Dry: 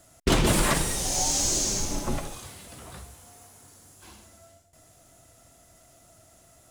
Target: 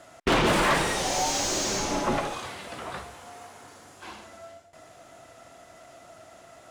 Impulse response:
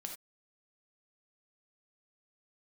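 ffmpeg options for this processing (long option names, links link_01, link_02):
-filter_complex "[0:a]highshelf=frequency=5600:gain=-10.5,asplit=2[link_01][link_02];[link_02]highpass=frequency=720:poles=1,volume=24dB,asoftclip=type=tanh:threshold=-9dB[link_03];[link_01][link_03]amix=inputs=2:normalize=0,lowpass=frequency=2500:poles=1,volume=-6dB,volume=-4dB"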